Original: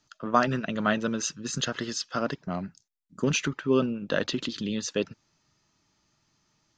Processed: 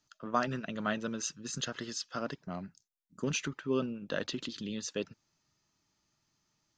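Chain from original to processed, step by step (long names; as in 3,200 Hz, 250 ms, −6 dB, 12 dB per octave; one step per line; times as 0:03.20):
high-shelf EQ 6,400 Hz +5 dB
level −8 dB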